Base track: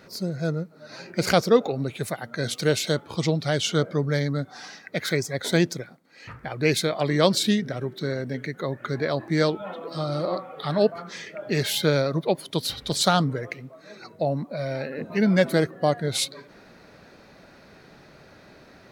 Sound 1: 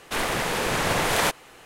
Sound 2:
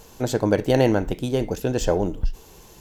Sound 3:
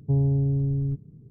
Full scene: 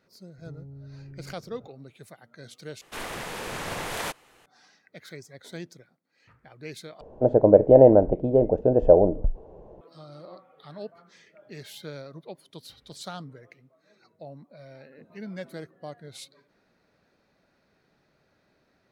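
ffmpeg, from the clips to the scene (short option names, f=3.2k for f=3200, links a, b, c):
-filter_complex "[0:a]volume=-18dB[a];[3:a]acompressor=threshold=-39dB:ratio=5:attack=5.3:release=112:knee=1:detection=peak[b];[2:a]lowpass=f=610:t=q:w=4[c];[a]asplit=3[d][e][f];[d]atrim=end=2.814[g];[1:a]atrim=end=1.65,asetpts=PTS-STARTPTS,volume=-9.5dB[h];[e]atrim=start=4.456:end=7.014[i];[c]atrim=end=2.8,asetpts=PTS-STARTPTS,volume=-1.5dB[j];[f]atrim=start=9.806[k];[b]atrim=end=1.3,asetpts=PTS-STARTPTS,volume=-5dB,afade=t=in:d=0.004:c=hsin,afade=t=out:st=1.296:d=0.004:c=hsin,adelay=380[l];[g][h]acrossfade=d=0.004:c1=hsin:c2=hsin[m];[m][i]acrossfade=d=0.004:c1=hsin:c2=hsin[n];[n][j]acrossfade=d=0.004:c1=hsin:c2=hsin[o];[o][k]acrossfade=d=0.004:c1=hsin:c2=hsin[p];[p][l]amix=inputs=2:normalize=0"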